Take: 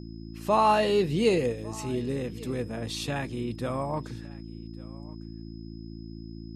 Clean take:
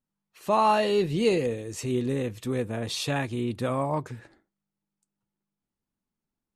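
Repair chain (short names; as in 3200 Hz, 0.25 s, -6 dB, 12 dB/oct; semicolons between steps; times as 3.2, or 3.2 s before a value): de-hum 55.6 Hz, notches 6; notch 5100 Hz, Q 30; inverse comb 1.151 s -22 dB; gain correction +3.5 dB, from 1.52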